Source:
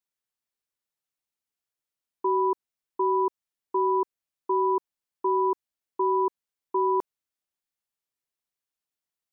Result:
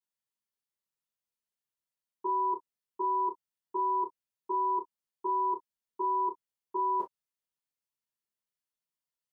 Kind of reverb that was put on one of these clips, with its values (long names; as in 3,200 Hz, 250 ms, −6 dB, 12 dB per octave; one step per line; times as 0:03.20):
reverb whose tail is shaped and stops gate 80 ms falling, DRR −5 dB
level −12 dB